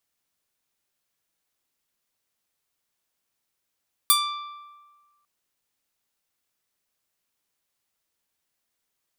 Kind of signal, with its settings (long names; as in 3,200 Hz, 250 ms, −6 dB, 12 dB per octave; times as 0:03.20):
Karplus-Strong string D6, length 1.15 s, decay 1.45 s, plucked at 0.44, bright